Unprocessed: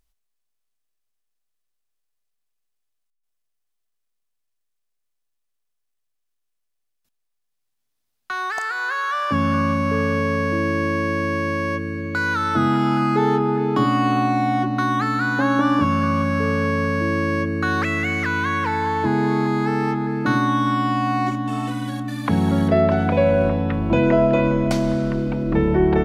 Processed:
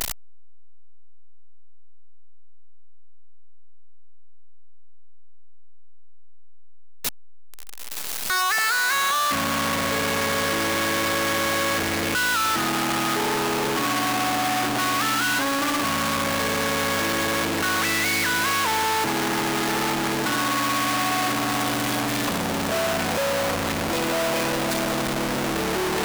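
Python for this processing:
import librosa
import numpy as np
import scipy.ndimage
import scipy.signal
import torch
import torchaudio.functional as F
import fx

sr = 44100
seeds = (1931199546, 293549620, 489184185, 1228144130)

y = np.sign(x) * np.sqrt(np.mean(np.square(x)))
y = fx.low_shelf(y, sr, hz=200.0, db=-11.5)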